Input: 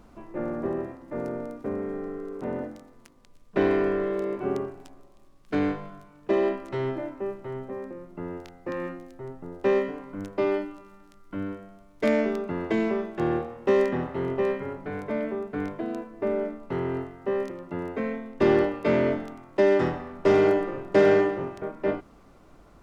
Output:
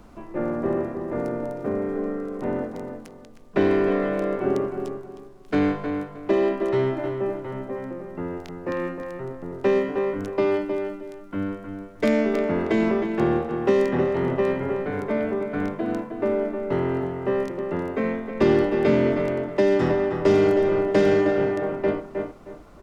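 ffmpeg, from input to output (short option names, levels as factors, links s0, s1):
-filter_complex "[0:a]asplit=2[s0][s1];[s1]adelay=312,lowpass=f=2700:p=1,volume=0.447,asplit=2[s2][s3];[s3]adelay=312,lowpass=f=2700:p=1,volume=0.27,asplit=2[s4][s5];[s5]adelay=312,lowpass=f=2700:p=1,volume=0.27[s6];[s0][s2][s4][s6]amix=inputs=4:normalize=0,acrossover=split=350|3000[s7][s8][s9];[s8]acompressor=threshold=0.0501:ratio=6[s10];[s7][s10][s9]amix=inputs=3:normalize=0,volume=1.68"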